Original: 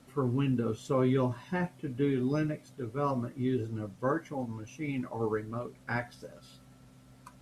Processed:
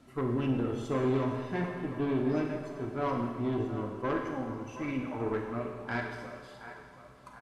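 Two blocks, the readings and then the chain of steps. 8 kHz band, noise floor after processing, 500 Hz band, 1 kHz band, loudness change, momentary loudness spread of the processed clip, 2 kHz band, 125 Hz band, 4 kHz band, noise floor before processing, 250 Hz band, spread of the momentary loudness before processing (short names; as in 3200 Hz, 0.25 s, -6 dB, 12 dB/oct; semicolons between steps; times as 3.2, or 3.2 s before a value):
n/a, -53 dBFS, 0.0 dB, +1.0 dB, -0.5 dB, 16 LU, +0.5 dB, -2.5 dB, 0.0 dB, -57 dBFS, 0.0 dB, 10 LU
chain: high shelf 6100 Hz -9.5 dB; comb 3 ms, depth 33%; tube stage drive 27 dB, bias 0.5; on a send: narrowing echo 0.723 s, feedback 59%, band-pass 1000 Hz, level -10.5 dB; on the sum: Schroeder reverb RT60 1.5 s, combs from 30 ms, DRR 2.5 dB; gain +1.5 dB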